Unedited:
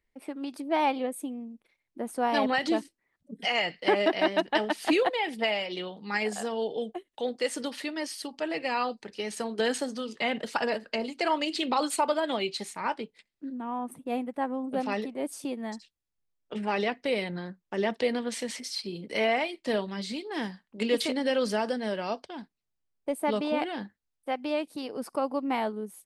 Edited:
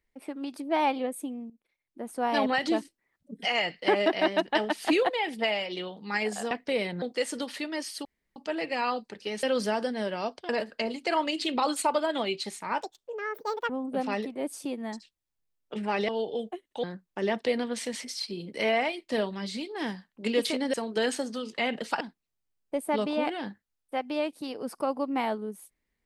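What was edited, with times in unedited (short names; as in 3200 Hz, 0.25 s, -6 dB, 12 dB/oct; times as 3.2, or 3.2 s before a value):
1.5–2.39 fade in, from -14.5 dB
6.51–7.26 swap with 16.88–17.39
8.29 insert room tone 0.31 s
9.36–10.63 swap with 21.29–22.35
12.95–14.49 speed 174%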